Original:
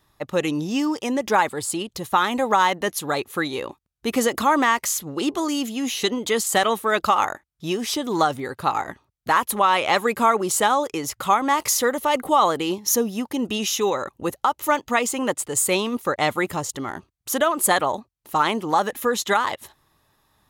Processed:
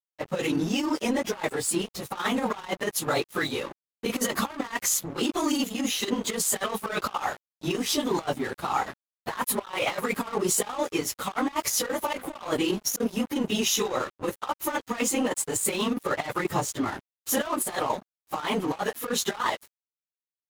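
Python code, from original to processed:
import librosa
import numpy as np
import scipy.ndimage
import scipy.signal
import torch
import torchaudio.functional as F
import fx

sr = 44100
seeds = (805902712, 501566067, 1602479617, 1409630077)

y = fx.phase_scramble(x, sr, seeds[0], window_ms=50)
y = fx.over_compress(y, sr, threshold_db=-23.0, ratio=-0.5)
y = np.sign(y) * np.maximum(np.abs(y) - 10.0 ** (-36.0 / 20.0), 0.0)
y = F.gain(torch.from_numpy(y), -1.5).numpy()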